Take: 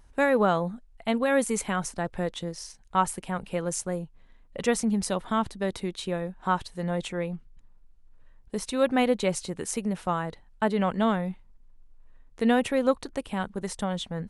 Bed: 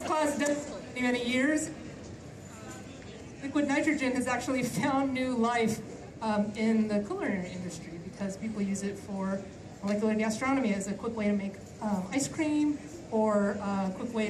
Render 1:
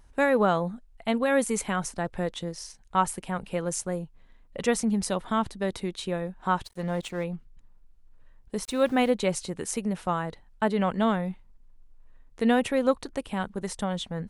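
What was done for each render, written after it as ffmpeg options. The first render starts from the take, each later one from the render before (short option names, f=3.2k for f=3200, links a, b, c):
-filter_complex "[0:a]asettb=1/sr,asplit=3[a][b][c];[a]atrim=end=6.634[d];[b]atrim=start=6.63:end=7.24,asetpts=PTS-STARTPTS,afade=t=in:d=0.004:c=qsin,afade=t=out:st=0.606:d=0.004:c=qsin,aeval=exprs='sgn(val(0))*max(abs(val(0))-0.00422,0)':c=same[e];[c]atrim=start=7.236[f];[d][e]acrossfade=d=0.004:c1=hsin:c2=qsin[g];[g][f]acrossfade=d=0.004:c1=qsin:c2=hsin,asettb=1/sr,asplit=3[h][i][j];[h]atrim=end=8.644[k];[i]atrim=start=8.64:end=9.11,asetpts=PTS-STARTPTS,afade=t=in:d=0.004:c=qsin,afade=t=out:st=0.466:d=0.004:c=qsin,aeval=exprs='val(0)*gte(abs(val(0)),0.00631)':c=same[l];[j]atrim=start=9.106[m];[k][l]acrossfade=d=0.004:c1=hsin:c2=qsin[n];[n][m]acrossfade=d=0.004:c1=qsin:c2=hsin"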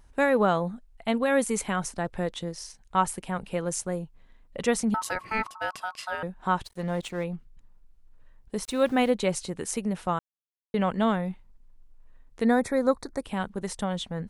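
-filter_complex "[0:a]asettb=1/sr,asplit=3[a][b][c];[a]atrim=end=4.944[d];[b]atrim=start=4.94:end=6.23,asetpts=PTS-STARTPTS,afade=t=in:d=0.004:c=qsin,afade=t=out:st=1.286:d=0.004:c=qsin,aeval=exprs='val(0)*sin(2*PI*1100*n/s)':c=same[e];[c]atrim=start=6.226[f];[d][e]acrossfade=d=0.004:c1=hsin:c2=qsin[g];[g][f]acrossfade=d=0.004:c1=qsin:c2=hsin,asettb=1/sr,asplit=3[h][i][j];[h]atrim=end=12.444[k];[i]atrim=start=12.44:end=13.23,asetpts=PTS-STARTPTS,afade=t=in:d=0.004:c=qsin,afade=t=out:st=0.786:d=0.004:c=qsin,asuperstop=centerf=2900:order=4:qfactor=1.7[l];[j]atrim=start=13.226[m];[k][l]acrossfade=d=0.004:c1=hsin:c2=qsin[n];[n][m]acrossfade=d=0.004:c1=qsin:c2=hsin,asplit=3[o][p][q];[o]atrim=end=10.19,asetpts=PTS-STARTPTS,afade=t=out:st=10.186:d=0.004:c=hsin[r];[p]atrim=start=10.19:end=10.74,asetpts=PTS-STARTPTS,volume=0[s];[q]atrim=start=10.74,asetpts=PTS-STARTPTS,afade=t=in:d=0.004:c=hsin[t];[r][s][t]concat=n=3:v=0:a=1"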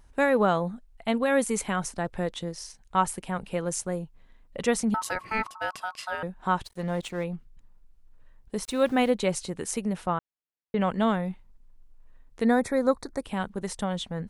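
-filter_complex "[0:a]asettb=1/sr,asplit=3[a][b][c];[a]atrim=end=10.064[d];[b]atrim=start=10.06:end=10.81,asetpts=PTS-STARTPTS,afade=t=in:d=0.004:c=qsin,afade=t=out:st=0.746:d=0.004:c=qsin,lowpass=3k[e];[c]atrim=start=10.806[f];[d][e]acrossfade=d=0.004:c1=hsin:c2=qsin[g];[g][f]acrossfade=d=0.004:c1=qsin:c2=hsin"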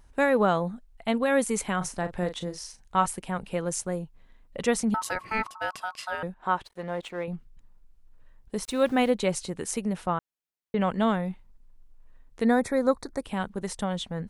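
-filter_complex "[0:a]asettb=1/sr,asplit=3[a][b][c];[a]atrim=end=1.774[d];[b]atrim=start=1.77:end=3.06,asetpts=PTS-STARTPTS,afade=t=in:d=0.004:c=qsin,afade=t=out:st=1.286:d=0.004:c=qsin,asplit=2[e][f];[f]adelay=39,volume=-10dB[g];[e][g]amix=inputs=2:normalize=0,atrim=end_sample=56889[h];[c]atrim=start=3.056[i];[d][h]acrossfade=d=0.004:c1=hsin:c2=qsin[j];[j][i]acrossfade=d=0.004:c1=qsin:c2=hsin,asettb=1/sr,asplit=3[k][l][m];[k]atrim=end=6.344[n];[l]atrim=start=6.34:end=7.28,asetpts=PTS-STARTPTS,afade=t=in:d=0.004:c=qsin,afade=t=out:st=0.936:d=0.004:c=qsin,bass=f=250:g=-10,treble=f=4k:g=-9[o];[m]atrim=start=7.276[p];[n][o]acrossfade=d=0.004:c1=hsin:c2=qsin[q];[q][p]acrossfade=d=0.004:c1=qsin:c2=hsin"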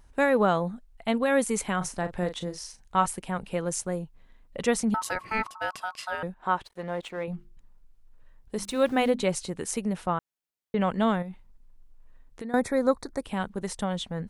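-filter_complex "[0:a]asettb=1/sr,asplit=3[a][b][c];[a]atrim=end=7.154[d];[b]atrim=start=7.15:end=9.22,asetpts=PTS-STARTPTS,afade=t=in:d=0.004:c=qsin,afade=t=out:st=2.066:d=0.004:c=qsin,bandreject=f=50:t=h:w=6,bandreject=f=100:t=h:w=6,bandreject=f=150:t=h:w=6,bandreject=f=200:t=h:w=6,bandreject=f=250:t=h:w=6,bandreject=f=300:t=h:w=6,bandreject=f=350:t=h:w=6[e];[c]atrim=start=9.216[f];[d][e]acrossfade=d=0.004:c1=hsin:c2=qsin[g];[g][f]acrossfade=d=0.004:c1=qsin:c2=hsin,asettb=1/sr,asplit=3[h][i][j];[h]atrim=end=11.224[k];[i]atrim=start=11.22:end=12.54,asetpts=PTS-STARTPTS,afade=t=in:d=0.004:c=qsin,afade=t=out:st=1.316:d=0.004:c=qsin,acompressor=threshold=-34dB:ratio=6:attack=3.2:release=140:knee=1:detection=peak[l];[j]atrim=start=12.536[m];[k][l]acrossfade=d=0.004:c1=hsin:c2=qsin[n];[n][m]acrossfade=d=0.004:c1=qsin:c2=hsin"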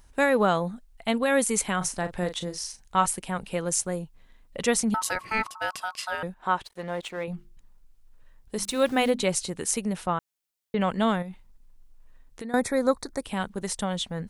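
-af "highshelf=f=2.7k:g=7"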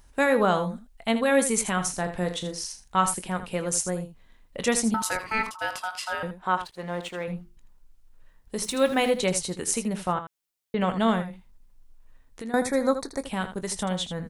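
-af "aecho=1:1:22|80:0.237|0.282"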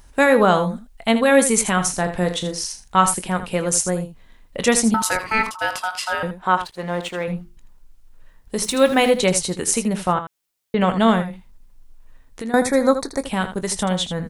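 -af "volume=7dB,alimiter=limit=-2dB:level=0:latency=1"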